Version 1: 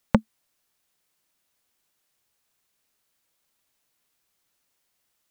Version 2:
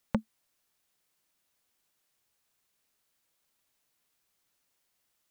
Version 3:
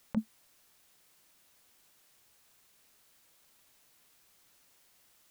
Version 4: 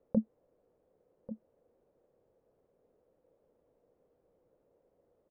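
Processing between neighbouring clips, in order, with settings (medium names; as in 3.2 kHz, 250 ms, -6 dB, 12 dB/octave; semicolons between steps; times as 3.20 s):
peak limiter -10 dBFS, peak gain reduction 8.5 dB; trim -2.5 dB
compressor with a negative ratio -32 dBFS, ratio -0.5; trim +5 dB
resonant low-pass 500 Hz, resonance Q 4.9; delay 1142 ms -14 dB; trim +1 dB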